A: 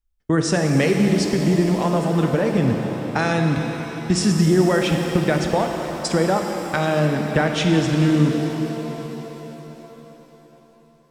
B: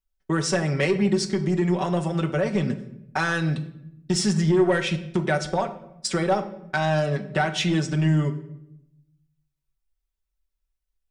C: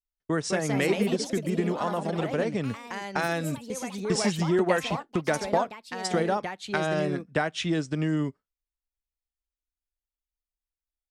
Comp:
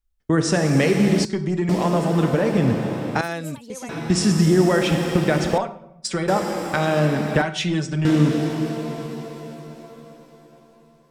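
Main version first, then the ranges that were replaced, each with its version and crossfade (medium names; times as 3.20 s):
A
1.25–1.69 s: from B
3.21–3.89 s: from C
5.58–6.28 s: from B
7.42–8.05 s: from B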